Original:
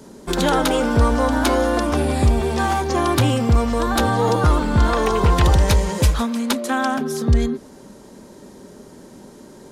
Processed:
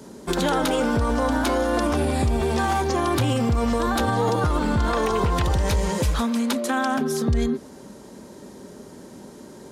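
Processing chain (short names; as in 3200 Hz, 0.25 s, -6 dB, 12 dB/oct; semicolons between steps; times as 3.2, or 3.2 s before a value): HPF 48 Hz 12 dB/oct; limiter -13.5 dBFS, peak gain reduction 9 dB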